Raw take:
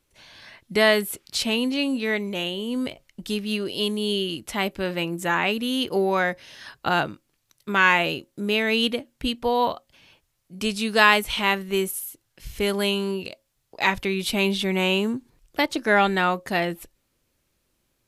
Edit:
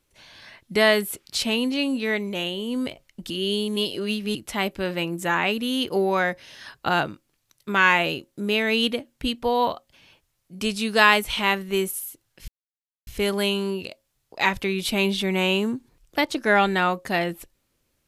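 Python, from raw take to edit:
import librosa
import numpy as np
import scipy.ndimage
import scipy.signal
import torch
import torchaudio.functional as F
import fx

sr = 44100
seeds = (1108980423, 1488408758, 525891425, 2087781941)

y = fx.edit(x, sr, fx.reverse_span(start_s=3.3, length_s=1.05),
    fx.insert_silence(at_s=12.48, length_s=0.59), tone=tone)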